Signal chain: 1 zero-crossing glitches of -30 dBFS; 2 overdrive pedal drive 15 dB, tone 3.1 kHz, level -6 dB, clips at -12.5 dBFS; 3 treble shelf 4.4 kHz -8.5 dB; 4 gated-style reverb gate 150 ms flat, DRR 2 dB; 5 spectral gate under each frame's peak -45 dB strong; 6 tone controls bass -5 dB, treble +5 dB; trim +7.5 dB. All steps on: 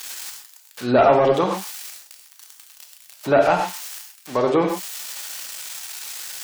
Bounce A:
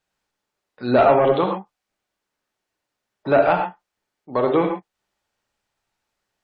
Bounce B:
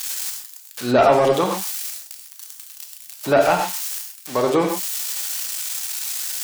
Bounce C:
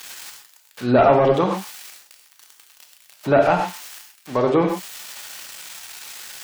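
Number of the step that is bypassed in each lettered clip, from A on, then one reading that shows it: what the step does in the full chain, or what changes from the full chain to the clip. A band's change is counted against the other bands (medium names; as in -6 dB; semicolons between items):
1, distortion -9 dB; 3, 8 kHz band +6.5 dB; 6, momentary loudness spread change +2 LU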